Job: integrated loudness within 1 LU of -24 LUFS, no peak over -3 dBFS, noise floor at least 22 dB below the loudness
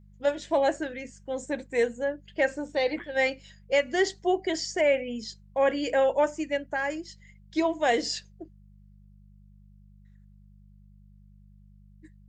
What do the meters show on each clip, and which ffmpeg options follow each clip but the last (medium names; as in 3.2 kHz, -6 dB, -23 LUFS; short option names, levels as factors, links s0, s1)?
hum 50 Hz; highest harmonic 200 Hz; hum level -51 dBFS; loudness -27.5 LUFS; peak level -11.5 dBFS; loudness target -24.0 LUFS
-> -af "bandreject=f=50:t=h:w=4,bandreject=f=100:t=h:w=4,bandreject=f=150:t=h:w=4,bandreject=f=200:t=h:w=4"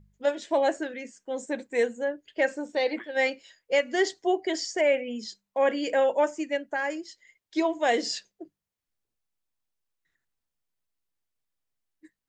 hum not found; loudness -27.5 LUFS; peak level -11.5 dBFS; loudness target -24.0 LUFS
-> -af "volume=1.5"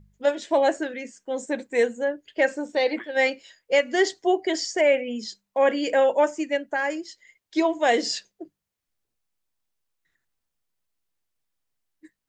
loudness -24.0 LUFS; peak level -8.0 dBFS; noise floor -84 dBFS